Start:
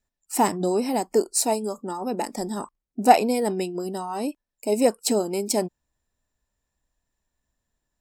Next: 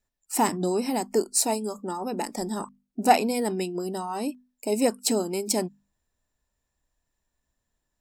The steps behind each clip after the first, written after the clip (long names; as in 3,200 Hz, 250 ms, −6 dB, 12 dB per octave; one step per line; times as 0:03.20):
mains-hum notches 50/100/150/200/250 Hz
dynamic equaliser 580 Hz, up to −5 dB, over −32 dBFS, Q 1.2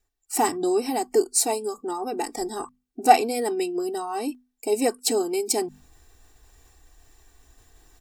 comb filter 2.6 ms, depth 90%
reversed playback
upward compression, threshold −34 dBFS
reversed playback
level −1 dB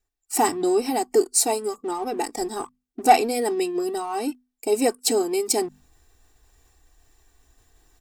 leveller curve on the samples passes 1
level −2 dB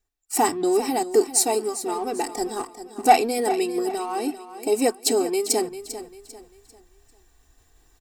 repeating echo 396 ms, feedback 35%, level −12.5 dB